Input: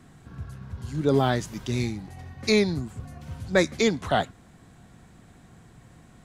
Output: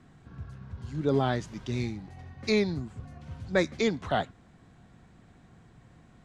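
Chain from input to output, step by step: distance through air 75 m; trim -4 dB

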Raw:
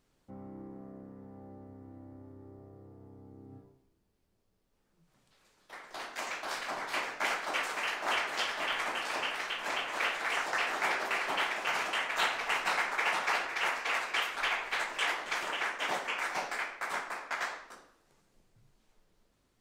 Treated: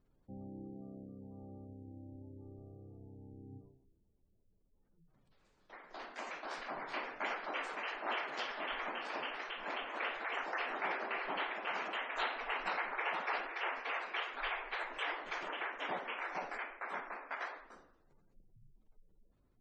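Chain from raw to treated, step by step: spectral gate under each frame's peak -20 dB strong; tilt EQ -2 dB/octave; trim -5.5 dB

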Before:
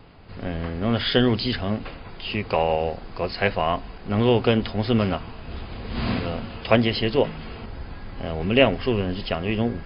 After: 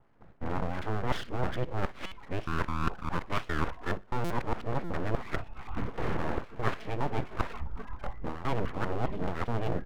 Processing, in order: time reversed locally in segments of 206 ms; spectral noise reduction 21 dB; low-pass 1.7 kHz 24 dB/octave; reverse; compression 12:1, threshold -31 dBFS, peak gain reduction 20 dB; reverse; full-wave rectifier; on a send: feedback delay 61 ms, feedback 37%, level -23.5 dB; on the sum: buffer glitch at 2.06/4.24/4.85 s, samples 256, times 10; warped record 45 rpm, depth 160 cents; trim +6.5 dB

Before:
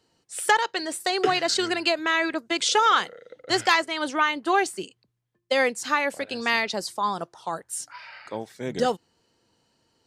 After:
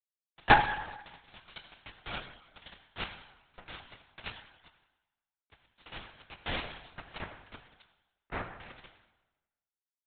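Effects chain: level held to a coarse grid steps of 17 dB; power-law waveshaper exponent 2; fuzz box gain 35 dB, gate -42 dBFS; on a send at -3 dB: reverberation RT60 1.1 s, pre-delay 5 ms; on the sum: LPC vocoder at 8 kHz whisper

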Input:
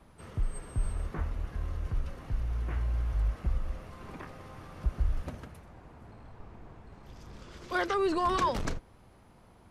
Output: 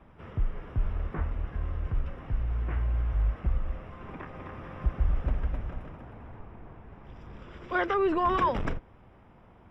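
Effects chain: Savitzky-Golay filter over 25 samples; 4.08–6.40 s: bouncing-ball echo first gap 260 ms, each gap 0.7×, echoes 5; trim +2.5 dB

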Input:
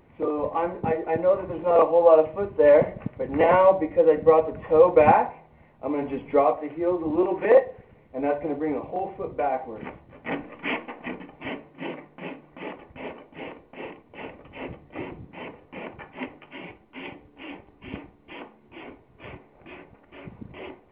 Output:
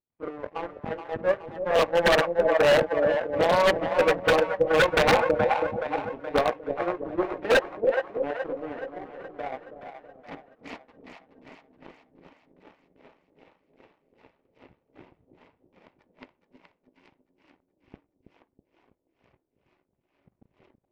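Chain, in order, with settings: low-pass 1.8 kHz 6 dB/octave; power-law waveshaper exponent 2; on a send: two-band feedback delay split 610 Hz, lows 325 ms, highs 423 ms, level -7.5 dB; on the sum: wavefolder -18.5 dBFS; trim +6.5 dB

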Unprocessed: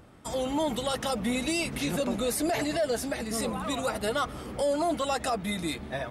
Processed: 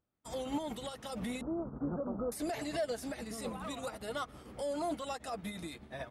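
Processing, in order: 1.41–2.32 s: steep low-pass 1.4 kHz 72 dB/octave; peak limiter -26.5 dBFS, peak gain reduction 8.5 dB; upward expansion 2.5:1, over -53 dBFS

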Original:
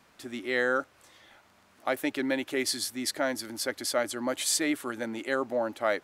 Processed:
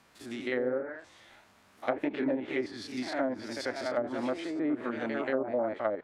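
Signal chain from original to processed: spectrogram pixelated in time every 50 ms; ever faster or slower copies 114 ms, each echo +1 st, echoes 3, each echo -6 dB; low-pass that closes with the level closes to 530 Hz, closed at -23 dBFS

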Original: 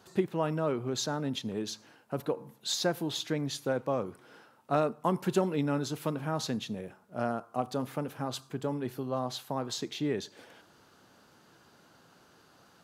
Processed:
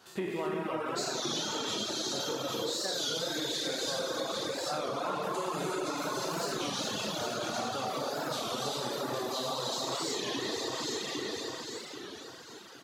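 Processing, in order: spectral sustain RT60 2.51 s; saturation -13.5 dBFS, distortion -24 dB; treble shelf 6.8 kHz -11 dB; 6.24–7.73 s: overload inside the chain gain 22 dB; on a send: feedback delay 800 ms, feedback 34%, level -6 dB; on the sum: gated-style reverb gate 390 ms rising, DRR -3.5 dB; reverb removal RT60 0.88 s; tilt EQ +2.5 dB/octave; compression, threshold -31 dBFS, peak gain reduction 11 dB; warped record 33 1/3 rpm, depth 160 cents

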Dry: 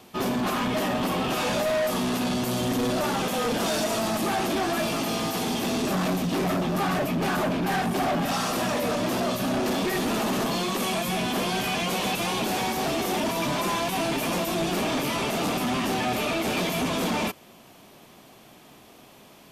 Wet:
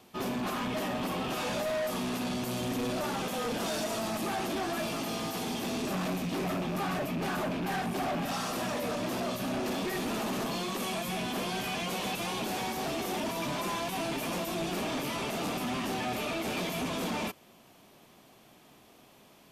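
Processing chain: rattle on loud lows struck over -29 dBFS, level -28 dBFS; trim -7 dB

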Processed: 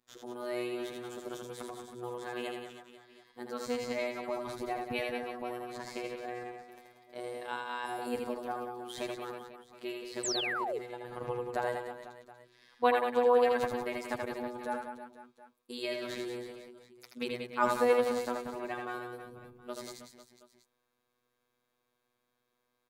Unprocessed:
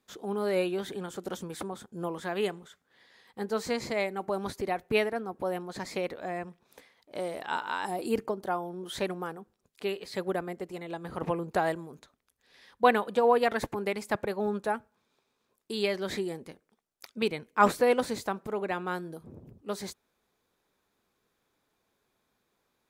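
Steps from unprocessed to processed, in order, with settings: robot voice 122 Hz; reverse bouncing-ball echo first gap 80 ms, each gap 1.3×, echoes 5; painted sound fall, 10.23–10.79 s, 390–8500 Hz -30 dBFS; trim -4.5 dB

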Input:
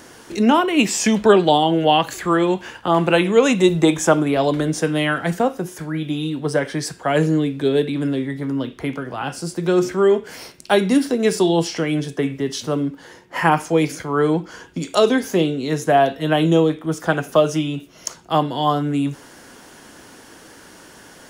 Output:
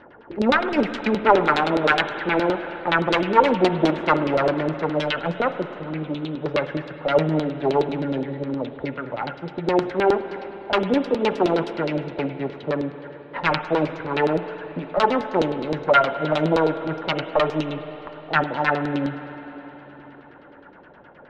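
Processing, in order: self-modulated delay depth 0.75 ms; LFO low-pass saw down 9.6 Hz 360–4300 Hz; small resonant body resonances 570/870/1400/3900 Hz, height 7 dB; level-controlled noise filter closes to 1.7 kHz, open at -11 dBFS; on a send: reverberation RT60 4.0 s, pre-delay 50 ms, DRR 10 dB; on the sum: trim -6 dB

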